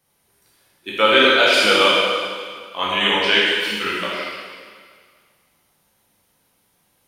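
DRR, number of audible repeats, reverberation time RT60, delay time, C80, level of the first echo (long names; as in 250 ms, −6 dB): −7.0 dB, no echo audible, 1.8 s, no echo audible, 0.0 dB, no echo audible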